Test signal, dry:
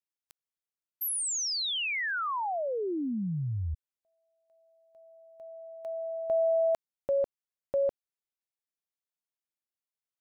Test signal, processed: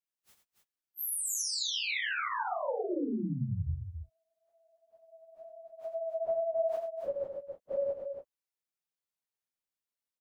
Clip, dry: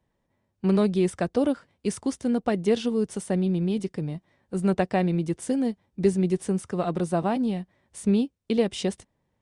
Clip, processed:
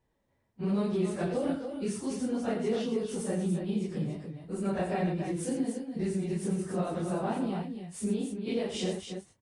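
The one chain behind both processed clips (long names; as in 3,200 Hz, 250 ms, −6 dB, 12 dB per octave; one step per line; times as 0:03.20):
random phases in long frames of 100 ms
downward compressor 2 to 1, threshold −30 dBFS
loudspeakers that aren't time-aligned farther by 29 metres −8 dB, 97 metres −7 dB
level −2 dB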